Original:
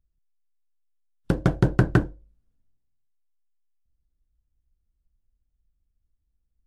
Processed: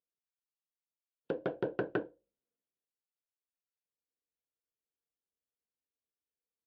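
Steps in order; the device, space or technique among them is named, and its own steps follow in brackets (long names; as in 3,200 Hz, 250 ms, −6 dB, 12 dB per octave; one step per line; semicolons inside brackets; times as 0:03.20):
phone earpiece (loudspeaker in its box 420–3,100 Hz, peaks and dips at 470 Hz +9 dB, 820 Hz −4 dB, 1,200 Hz −9 dB, 2,000 Hz −9 dB)
level −7 dB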